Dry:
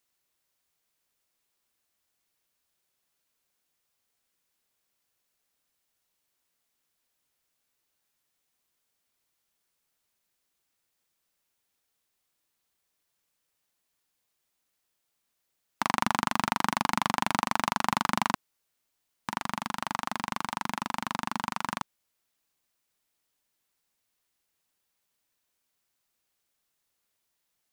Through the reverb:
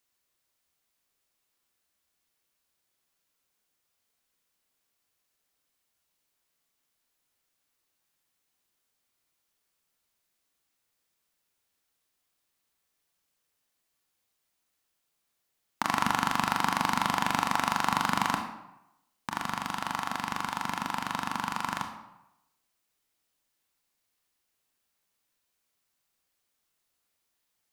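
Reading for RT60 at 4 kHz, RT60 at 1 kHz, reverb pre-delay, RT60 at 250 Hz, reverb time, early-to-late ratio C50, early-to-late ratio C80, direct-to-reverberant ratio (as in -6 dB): 0.60 s, 0.90 s, 24 ms, 0.85 s, 0.85 s, 6.5 dB, 9.0 dB, 4.0 dB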